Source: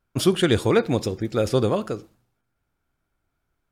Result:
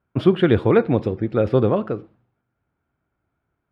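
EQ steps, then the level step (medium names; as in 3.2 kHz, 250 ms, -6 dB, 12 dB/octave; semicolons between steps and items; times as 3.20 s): high-pass 73 Hz; distance through air 490 m; treble shelf 11 kHz -10.5 dB; +4.5 dB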